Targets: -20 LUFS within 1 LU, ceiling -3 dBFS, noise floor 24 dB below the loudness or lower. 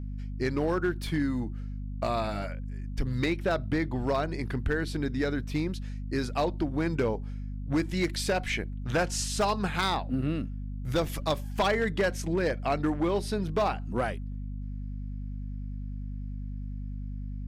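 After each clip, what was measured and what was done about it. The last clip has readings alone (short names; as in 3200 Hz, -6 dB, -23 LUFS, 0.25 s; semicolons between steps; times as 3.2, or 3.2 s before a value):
clipped 0.9%; flat tops at -20.0 dBFS; hum 50 Hz; harmonics up to 250 Hz; hum level -33 dBFS; loudness -31.0 LUFS; peak -20.0 dBFS; loudness target -20.0 LUFS
-> clip repair -20 dBFS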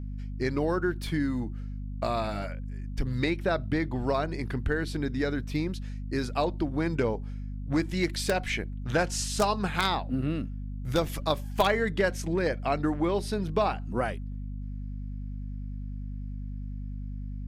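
clipped 0.0%; hum 50 Hz; harmonics up to 250 Hz; hum level -33 dBFS
-> notches 50/100/150/200/250 Hz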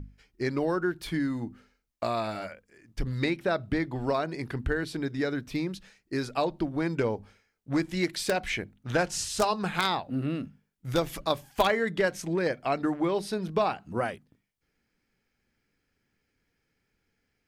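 hum none; loudness -30.0 LUFS; peak -10.5 dBFS; loudness target -20.0 LUFS
-> gain +10 dB; limiter -3 dBFS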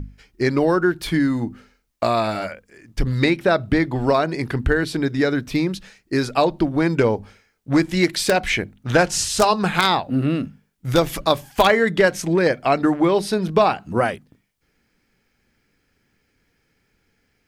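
loudness -20.0 LUFS; peak -3.0 dBFS; noise floor -68 dBFS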